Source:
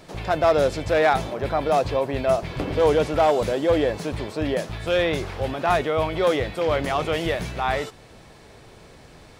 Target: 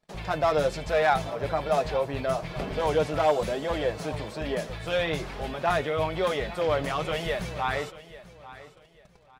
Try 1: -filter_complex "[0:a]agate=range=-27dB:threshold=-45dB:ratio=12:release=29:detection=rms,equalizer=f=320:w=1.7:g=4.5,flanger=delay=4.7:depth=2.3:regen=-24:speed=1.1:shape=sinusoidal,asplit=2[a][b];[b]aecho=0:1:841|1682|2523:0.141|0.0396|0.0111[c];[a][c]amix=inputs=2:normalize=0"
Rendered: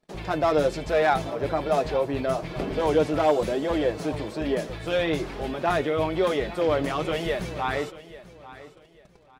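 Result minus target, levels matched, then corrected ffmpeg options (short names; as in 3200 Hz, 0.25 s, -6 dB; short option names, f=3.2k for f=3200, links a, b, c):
250 Hz band +4.5 dB
-filter_complex "[0:a]agate=range=-27dB:threshold=-45dB:ratio=12:release=29:detection=rms,equalizer=f=320:w=1.7:g=-4.5,flanger=delay=4.7:depth=2.3:regen=-24:speed=1.1:shape=sinusoidal,asplit=2[a][b];[b]aecho=0:1:841|1682|2523:0.141|0.0396|0.0111[c];[a][c]amix=inputs=2:normalize=0"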